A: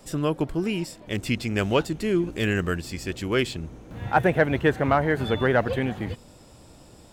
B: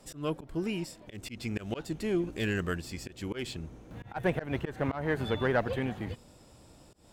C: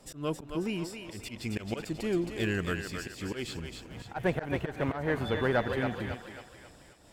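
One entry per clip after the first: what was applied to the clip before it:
harmonic generator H 4 −22 dB, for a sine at −7.5 dBFS; volume swells 162 ms; level −6 dB
feedback echo with a high-pass in the loop 269 ms, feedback 49%, high-pass 500 Hz, level −5 dB

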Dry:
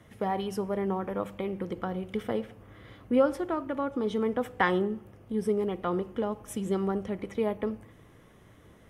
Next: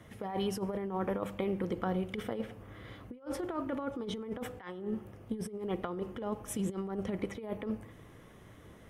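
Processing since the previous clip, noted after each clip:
compressor whose output falls as the input rises −32 dBFS, ratio −0.5
level −2.5 dB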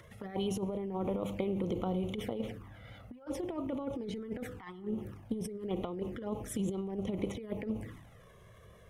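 upward compression, threshold −51 dBFS
transient designer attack +3 dB, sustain +8 dB
flanger swept by the level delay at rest 2.3 ms, full sweep at −31 dBFS
level −1 dB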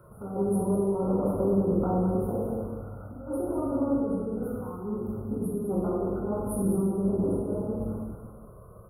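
linear-phase brick-wall band-stop 1,500–9,100 Hz
single-tap delay 200 ms −8 dB
dense smooth reverb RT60 1.3 s, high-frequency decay 0.8×, pre-delay 0 ms, DRR −7 dB

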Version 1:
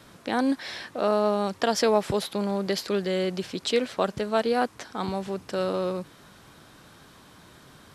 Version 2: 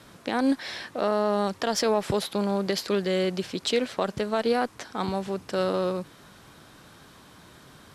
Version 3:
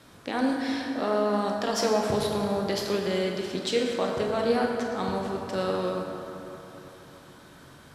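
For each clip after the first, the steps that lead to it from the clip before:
harmonic generator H 7 −31 dB, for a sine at −8 dBFS; brickwall limiter −16 dBFS, peak gain reduction 7.5 dB; level +2.5 dB
convolution reverb RT60 3.5 s, pre-delay 18 ms, DRR −0.5 dB; level −3.5 dB

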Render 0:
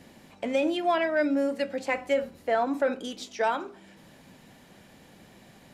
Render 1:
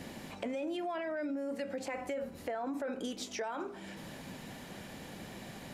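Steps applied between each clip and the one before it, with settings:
dynamic equaliser 3,700 Hz, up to −5 dB, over −48 dBFS, Q 0.97
brickwall limiter −27.5 dBFS, peak gain reduction 11.5 dB
downward compressor 3 to 1, threshold −44 dBFS, peak gain reduction 10 dB
level +6.5 dB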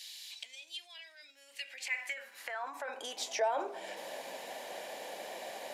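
low-shelf EQ 280 Hz −4.5 dB
high-pass filter sweep 3,900 Hz → 590 Hz, 0:01.16–0:03.53
parametric band 1,300 Hz −9 dB 0.37 octaves
level +4 dB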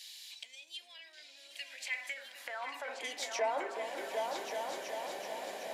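echo whose low-pass opens from repeat to repeat 377 ms, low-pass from 400 Hz, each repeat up 2 octaves, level 0 dB
level −2 dB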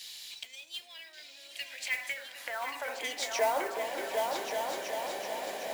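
noise that follows the level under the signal 16 dB
level +4.5 dB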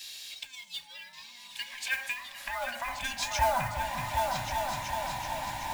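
frequency inversion band by band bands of 500 Hz
level +2 dB

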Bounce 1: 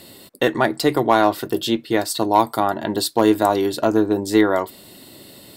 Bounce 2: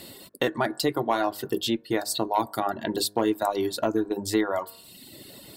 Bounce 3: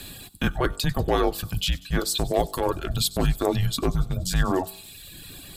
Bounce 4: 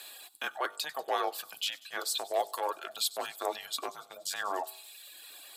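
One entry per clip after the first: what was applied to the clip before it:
hum removal 51.46 Hz, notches 35; reverb reduction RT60 0.91 s; downward compressor 2 to 1, threshold −26 dBFS, peak gain reduction 9 dB
transient designer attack −7 dB, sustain +1 dB; frequency shifter −280 Hz; delay with a high-pass on its return 95 ms, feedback 71%, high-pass 4,500 Hz, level −16 dB; level +4.5 dB
four-pole ladder high-pass 520 Hz, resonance 25%

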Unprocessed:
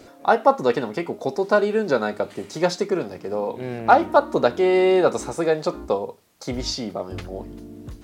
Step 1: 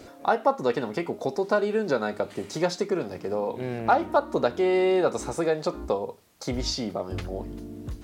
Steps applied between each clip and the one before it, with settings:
parametric band 65 Hz +4 dB 1.1 octaves
downward compressor 1.5 to 1, threshold −28 dBFS, peak gain reduction 7.5 dB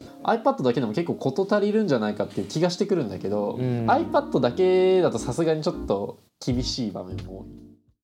fade-out on the ending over 1.82 s
noise gate −53 dBFS, range −14 dB
graphic EQ with 10 bands 125 Hz +9 dB, 250 Hz +6 dB, 2,000 Hz −4 dB, 4,000 Hz +5 dB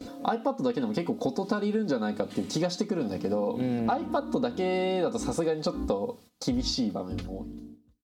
comb filter 4 ms, depth 56%
downward compressor 6 to 1, threshold −24 dBFS, peak gain reduction 11.5 dB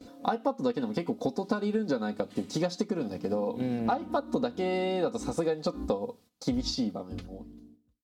expander for the loud parts 1.5 to 1, over −39 dBFS

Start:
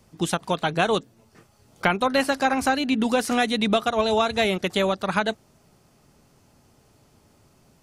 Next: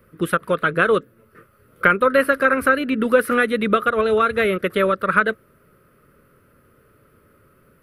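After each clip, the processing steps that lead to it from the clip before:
drawn EQ curve 270 Hz 0 dB, 530 Hz +8 dB, 790 Hz −16 dB, 1,300 Hz +12 dB, 6,900 Hz −21 dB, 11,000 Hz +4 dB
level +1 dB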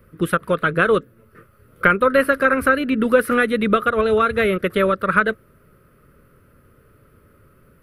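low-shelf EQ 120 Hz +9 dB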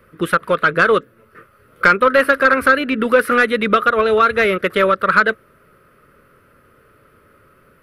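mid-hump overdrive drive 12 dB, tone 4,400 Hz, clips at −1 dBFS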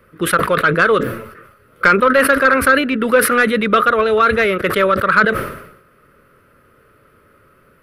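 level that may fall only so fast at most 71 dB per second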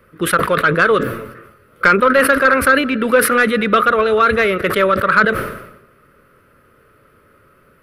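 convolution reverb RT60 0.70 s, pre-delay 159 ms, DRR 19.5 dB

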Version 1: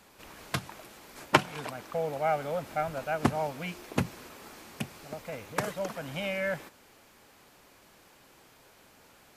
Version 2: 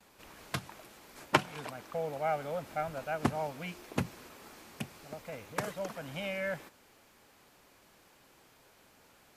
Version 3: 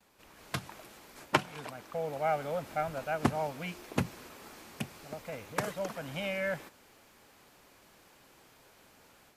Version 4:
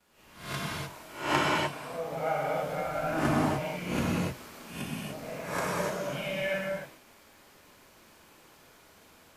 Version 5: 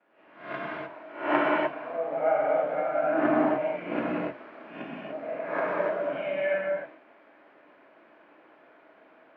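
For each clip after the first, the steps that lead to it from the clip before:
noise gate with hold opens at −52 dBFS; level −4 dB
automatic gain control gain up to 7 dB; level −5 dB
peak hold with a rise ahead of every peak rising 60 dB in 0.53 s; reverb whose tail is shaped and stops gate 330 ms flat, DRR −6 dB; level −5.5 dB
loudspeaker in its box 300–2,400 Hz, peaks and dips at 300 Hz +9 dB, 640 Hz +9 dB, 1,600 Hz +3 dB

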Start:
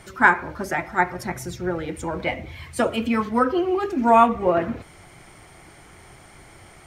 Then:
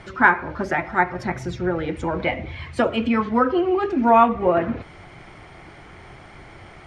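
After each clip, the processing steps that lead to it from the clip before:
in parallel at −1 dB: downward compressor, threshold −26 dBFS, peak gain reduction 16 dB
on the sum: low-pass filter 3,700 Hz 12 dB per octave
level −1 dB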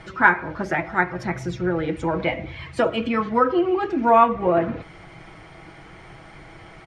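comb filter 6.2 ms, depth 41%
level −1 dB

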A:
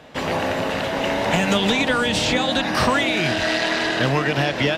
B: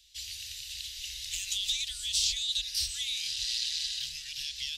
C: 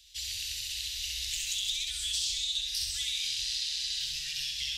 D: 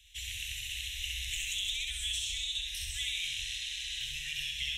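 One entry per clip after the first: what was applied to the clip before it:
inverse Chebyshev band-stop filter 260–930 Hz, stop band 80 dB; low shelf with overshoot 340 Hz −7.5 dB, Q 1.5
downward compressor 4 to 1, threshold −35 dBFS, peak gain reduction 9.5 dB; flutter between parallel walls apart 11.3 metres, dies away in 0.95 s; level +3 dB
high-shelf EQ 9,400 Hz −10.5 dB; phaser with its sweep stopped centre 1,300 Hz, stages 6; level +5 dB

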